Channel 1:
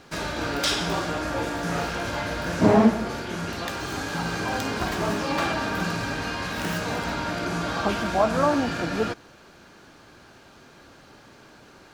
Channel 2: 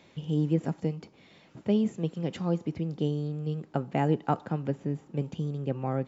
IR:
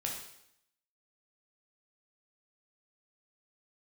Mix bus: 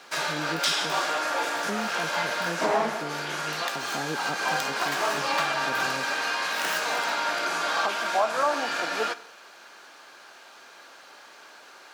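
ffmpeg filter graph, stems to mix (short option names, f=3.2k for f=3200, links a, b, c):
-filter_complex "[0:a]highpass=700,asoftclip=type=hard:threshold=-14dB,volume=3dB,asplit=2[a][b];[b]volume=-14dB[c];[1:a]highpass=200,volume=-6.5dB,asplit=2[d][e];[e]apad=whole_len=526495[f];[a][f]sidechaincompress=threshold=-36dB:ratio=8:attack=46:release=196[g];[2:a]atrim=start_sample=2205[h];[c][h]afir=irnorm=-1:irlink=0[i];[g][d][i]amix=inputs=3:normalize=0,alimiter=limit=-14dB:level=0:latency=1:release=346"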